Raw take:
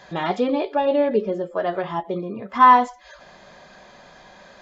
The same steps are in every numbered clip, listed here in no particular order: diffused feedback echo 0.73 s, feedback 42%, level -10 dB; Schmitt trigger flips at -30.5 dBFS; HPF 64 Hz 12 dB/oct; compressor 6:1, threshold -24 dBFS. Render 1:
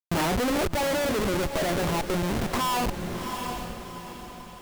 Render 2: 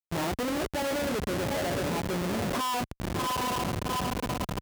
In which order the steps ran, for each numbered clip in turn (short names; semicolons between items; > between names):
HPF > Schmitt trigger > diffused feedback echo > compressor; diffused feedback echo > compressor > Schmitt trigger > HPF